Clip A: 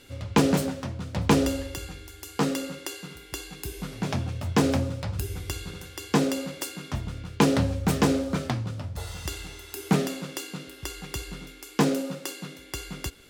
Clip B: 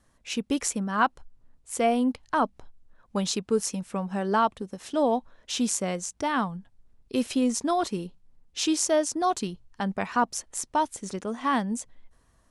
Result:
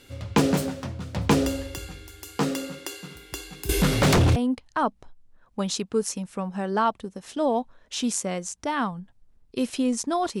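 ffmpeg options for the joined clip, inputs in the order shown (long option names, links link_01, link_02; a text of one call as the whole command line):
ffmpeg -i cue0.wav -i cue1.wav -filter_complex "[0:a]asettb=1/sr,asplit=3[link_01][link_02][link_03];[link_01]atrim=end=3.694[link_04];[link_02]atrim=start=3.69:end=4.36,asetpts=PTS-STARTPTS,afade=type=in:duration=0.004:curve=qsin,afade=type=out:start_time=0.666:duration=0.004:curve=qsin,aeval=exprs='0.188*sin(PI/2*4.47*val(0)/0.188)':channel_layout=same[link_05];[link_03]atrim=start=4.356[link_06];[link_04][link_05]acrossfade=duration=0.004:curve1=hsin:curve2=qsin[link_07];[link_07][link_06]acrossfade=duration=0.004:curve1=qsin:curve2=hsin,apad=whole_dur=10.4,atrim=end=10.4,atrim=end=4.362[link_08];[1:a]atrim=start=1.928:end=7.97[link_09];[link_08][link_09]acrossfade=duration=0.004:curve1=hsin:curve2=hsin" out.wav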